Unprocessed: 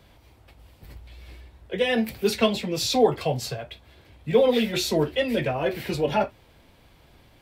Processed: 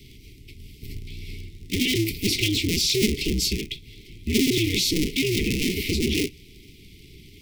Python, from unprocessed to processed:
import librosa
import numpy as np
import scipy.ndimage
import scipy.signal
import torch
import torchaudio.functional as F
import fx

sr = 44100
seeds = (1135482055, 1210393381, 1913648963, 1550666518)

p1 = fx.cycle_switch(x, sr, every=2, mode='inverted')
p2 = scipy.signal.sosfilt(scipy.signal.cheby1(5, 1.0, [420.0, 2100.0], 'bandstop', fs=sr, output='sos'), p1)
p3 = fx.peak_eq(p2, sr, hz=5300.0, db=4.5, octaves=0.39)
p4 = fx.over_compress(p3, sr, threshold_db=-32.0, ratio=-1.0)
y = p3 + (p4 * 10.0 ** (0.5 / 20.0))